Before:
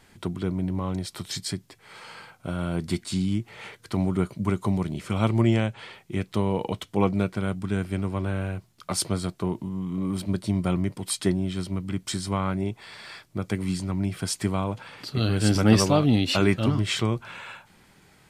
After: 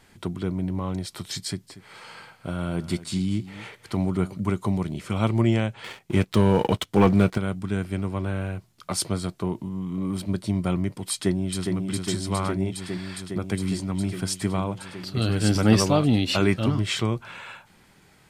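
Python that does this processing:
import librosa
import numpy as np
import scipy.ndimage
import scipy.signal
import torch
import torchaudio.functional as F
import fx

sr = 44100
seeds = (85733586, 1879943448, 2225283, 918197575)

y = fx.echo_single(x, sr, ms=236, db=-16.0, at=(1.43, 4.4))
y = fx.leveller(y, sr, passes=2, at=(5.84, 7.38))
y = fx.echo_throw(y, sr, start_s=11.11, length_s=0.63, ms=410, feedback_pct=85, wet_db=-4.5)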